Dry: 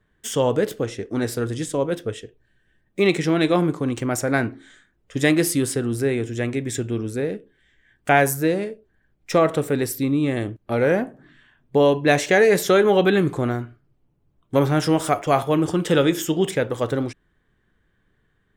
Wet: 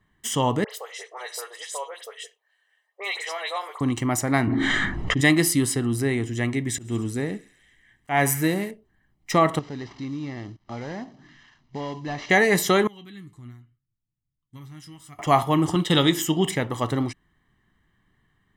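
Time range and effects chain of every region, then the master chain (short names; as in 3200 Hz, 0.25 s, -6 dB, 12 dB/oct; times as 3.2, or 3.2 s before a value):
0.64–3.81 steep high-pass 450 Hz 72 dB/oct + compressor 1.5:1, threshold -33 dBFS + dispersion highs, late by 68 ms, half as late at 2500 Hz
4.47–5.21 tape spacing loss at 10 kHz 23 dB + fast leveller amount 100%
6.69–8.71 thin delay 69 ms, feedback 73%, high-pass 1800 Hz, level -17 dB + auto swell 0.171 s
9.59–12.3 CVSD 32 kbps + compressor 1.5:1, threshold -48 dBFS
12.87–15.19 passive tone stack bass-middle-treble 6-0-2 + flange 1.3 Hz, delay 6.5 ms, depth 3.8 ms, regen +60%
15.75–16.15 expander -25 dBFS + bell 3700 Hz +12 dB 0.35 oct
whole clip: low shelf 97 Hz -7.5 dB; comb 1 ms, depth 64%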